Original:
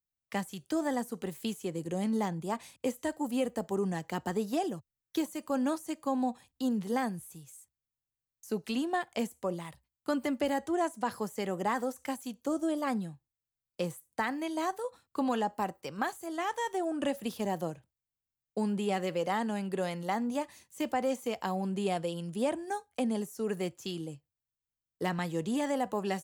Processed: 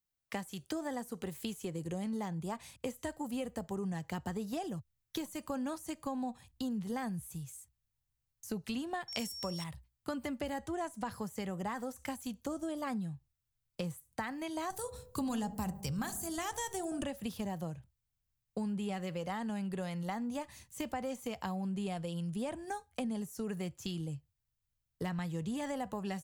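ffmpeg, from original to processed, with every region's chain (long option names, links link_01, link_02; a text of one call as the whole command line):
ffmpeg -i in.wav -filter_complex "[0:a]asettb=1/sr,asplit=3[link_01][link_02][link_03];[link_01]atrim=end=9.084[link_04];[link_02]atrim=start=9.08:end=9.64,asetpts=PTS-STARTPTS,afade=type=in:duration=0.004:curve=qsin,afade=type=out:start_time=0.556:duration=0.004:curve=qsin,highshelf=frequency=2200:gain=11.5,aeval=exprs='val(0)+0.0112*sin(2*PI*5500*n/s)':channel_layout=same[link_05];[link_03]atrim=start=9.636[link_06];[link_04][link_05]acrossfade=duration=0.004:curve1=hsin:curve2=qsin[link_07];[link_07][link_06]acrossfade=duration=0.004:curve1=qsin:curve2=hsin,asettb=1/sr,asplit=3[link_08][link_09][link_10];[link_08]atrim=end=14.704[link_11];[link_09]atrim=start=14.7:end=17.03,asetpts=PTS-STARTPTS,afade=type=in:duration=0.004:curve=qsin,afade=type=out:start_time=2.326:duration=0.004:curve=qsin,bass=frequency=250:gain=13,treble=frequency=4000:gain=14,bandreject=frequency=50.04:width_type=h:width=4,bandreject=frequency=100.08:width_type=h:width=4,bandreject=frequency=150.12:width_type=h:width=4,bandreject=frequency=200.16:width_type=h:width=4,bandreject=frequency=250.2:width_type=h:width=4,bandreject=frequency=300.24:width_type=h:width=4,bandreject=frequency=350.28:width_type=h:width=4,bandreject=frequency=400.32:width_type=h:width=4,bandreject=frequency=450.36:width_type=h:width=4,bandreject=frequency=500.4:width_type=h:width=4,bandreject=frequency=550.44:width_type=h:width=4,bandreject=frequency=600.48:width_type=h:width=4,bandreject=frequency=650.52:width_type=h:width=4,bandreject=frequency=700.56:width_type=h:width=4,bandreject=frequency=750.6:width_type=h:width=4,bandreject=frequency=800.64:width_type=h:width=4,asplit=2[link_12][link_13];[link_13]adelay=70,lowpass=frequency=1300:poles=1,volume=-17dB,asplit=2[link_14][link_15];[link_15]adelay=70,lowpass=frequency=1300:poles=1,volume=0.53,asplit=2[link_16][link_17];[link_17]adelay=70,lowpass=frequency=1300:poles=1,volume=0.53,asplit=2[link_18][link_19];[link_19]adelay=70,lowpass=frequency=1300:poles=1,volume=0.53,asplit=2[link_20][link_21];[link_21]adelay=70,lowpass=frequency=1300:poles=1,volume=0.53[link_22];[link_12][link_14][link_16][link_18][link_20][link_22]amix=inputs=6:normalize=0,atrim=end_sample=102753[link_23];[link_10]atrim=start=17.026[link_24];[link_11][link_23]acrossfade=duration=0.004:curve1=hsin:curve2=qsin[link_25];[link_25][link_24]acrossfade=duration=0.004:curve1=qsin:curve2=hsin,asubboost=boost=6:cutoff=130,acompressor=threshold=-39dB:ratio=3,volume=2dB" out.wav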